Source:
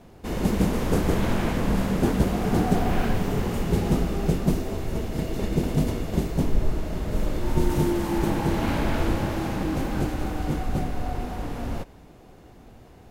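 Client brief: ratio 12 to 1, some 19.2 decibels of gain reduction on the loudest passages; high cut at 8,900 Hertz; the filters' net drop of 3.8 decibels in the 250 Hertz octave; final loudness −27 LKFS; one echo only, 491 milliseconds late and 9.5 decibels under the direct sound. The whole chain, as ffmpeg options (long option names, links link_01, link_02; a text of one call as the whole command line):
ffmpeg -i in.wav -af "lowpass=8900,equalizer=frequency=250:width_type=o:gain=-5.5,acompressor=threshold=-35dB:ratio=12,aecho=1:1:491:0.335,volume=14.5dB" out.wav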